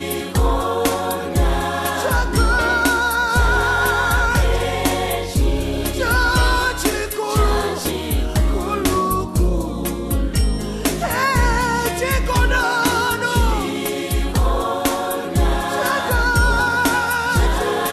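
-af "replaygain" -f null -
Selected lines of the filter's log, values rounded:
track_gain = +2.3 dB
track_peak = 0.361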